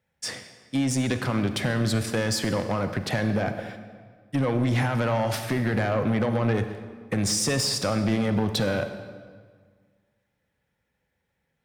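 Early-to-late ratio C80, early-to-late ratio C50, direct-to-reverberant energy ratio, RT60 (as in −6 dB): 10.5 dB, 9.5 dB, 8.5 dB, 1.7 s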